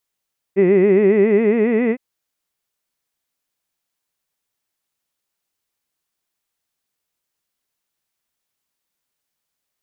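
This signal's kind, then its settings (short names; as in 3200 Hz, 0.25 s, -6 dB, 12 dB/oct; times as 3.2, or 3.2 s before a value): formant-synthesis vowel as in hid, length 1.41 s, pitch 185 Hz, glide +4.5 st, vibrato 7.3 Hz, vibrato depth 1.3 st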